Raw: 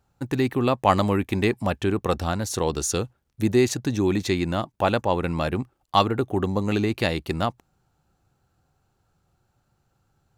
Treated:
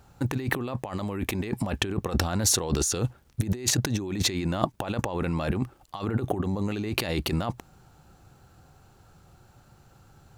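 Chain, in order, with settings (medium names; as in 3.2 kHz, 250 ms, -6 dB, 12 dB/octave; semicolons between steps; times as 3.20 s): compressor with a negative ratio -33 dBFS, ratio -1; trim +4.5 dB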